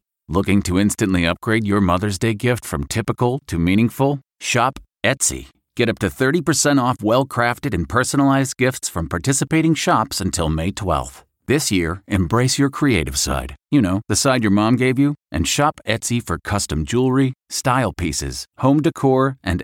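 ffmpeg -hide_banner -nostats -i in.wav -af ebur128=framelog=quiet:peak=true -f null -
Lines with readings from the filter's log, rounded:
Integrated loudness:
  I:         -18.7 LUFS
  Threshold: -28.8 LUFS
Loudness range:
  LRA:         1.9 LU
  Threshold: -38.9 LUFS
  LRA low:   -19.8 LUFS
  LRA high:  -17.8 LUFS
True peak:
  Peak:       -3.7 dBFS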